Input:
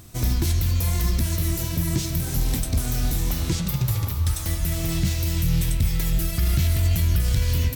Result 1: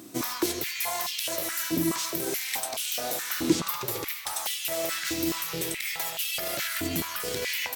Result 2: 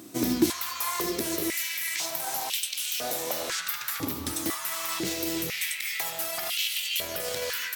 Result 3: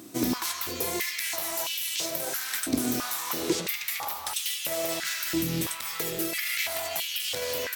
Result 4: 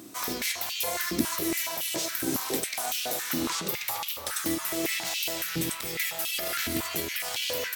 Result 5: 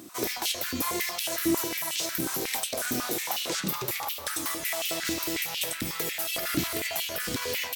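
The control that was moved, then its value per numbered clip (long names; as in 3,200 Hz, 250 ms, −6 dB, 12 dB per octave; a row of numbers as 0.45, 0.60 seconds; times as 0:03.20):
high-pass on a step sequencer, speed: 4.7, 2, 3, 7.2, 11 Hertz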